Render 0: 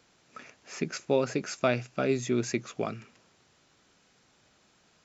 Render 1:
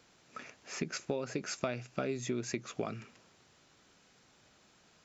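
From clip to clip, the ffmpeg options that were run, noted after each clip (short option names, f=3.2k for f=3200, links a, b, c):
-af "acompressor=threshold=-31dB:ratio=10"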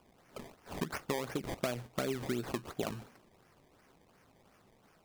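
-af "acrusher=samples=22:mix=1:aa=0.000001:lfo=1:lforange=22:lforate=2.8"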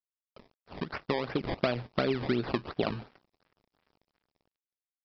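-af "dynaudnorm=f=370:g=5:m=12dB,aresample=11025,aeval=exprs='sgn(val(0))*max(abs(val(0))-0.00398,0)':c=same,aresample=44100,volume=-5dB"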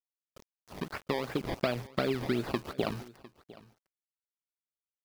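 -af "acrusher=bits=7:mix=0:aa=0.000001,aecho=1:1:704:0.1,volume=-1.5dB"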